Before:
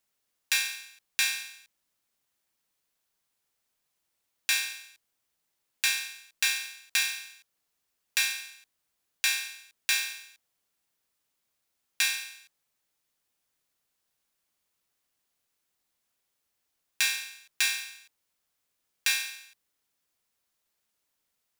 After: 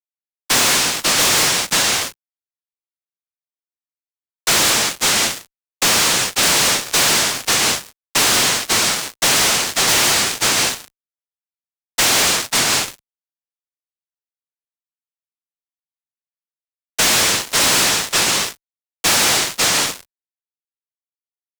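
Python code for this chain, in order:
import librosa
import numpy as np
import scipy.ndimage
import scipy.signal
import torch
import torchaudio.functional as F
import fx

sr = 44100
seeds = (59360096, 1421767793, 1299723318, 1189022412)

p1 = fx.partial_stretch(x, sr, pct=120)
p2 = fx.peak_eq(p1, sr, hz=2700.0, db=6.0, octaves=1.4)
p3 = p2 + fx.echo_single(p2, sr, ms=536, db=-10.0, dry=0)
p4 = fx.rev_plate(p3, sr, seeds[0], rt60_s=0.62, hf_ratio=0.75, predelay_ms=75, drr_db=6.5)
p5 = fx.chorus_voices(p4, sr, voices=4, hz=0.16, base_ms=13, depth_ms=1.3, mix_pct=20)
p6 = fx.high_shelf(p5, sr, hz=5700.0, db=-10.0)
p7 = fx.noise_vocoder(p6, sr, seeds[1], bands=1)
p8 = fx.fuzz(p7, sr, gain_db=46.0, gate_db=-53.0)
y = fx.band_squash(p8, sr, depth_pct=40)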